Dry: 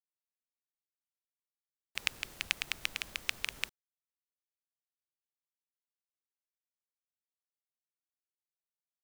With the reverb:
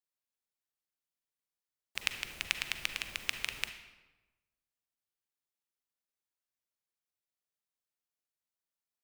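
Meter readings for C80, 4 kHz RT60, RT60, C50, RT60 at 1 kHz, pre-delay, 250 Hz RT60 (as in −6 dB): 11.0 dB, 0.80 s, 1.1 s, 9.0 dB, 1.1 s, 37 ms, 1.2 s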